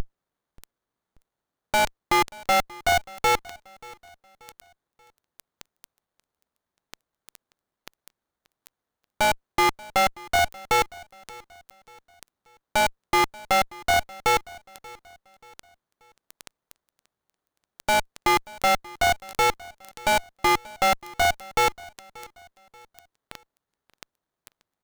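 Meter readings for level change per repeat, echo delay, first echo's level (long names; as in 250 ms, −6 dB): −7.5 dB, 583 ms, −22.0 dB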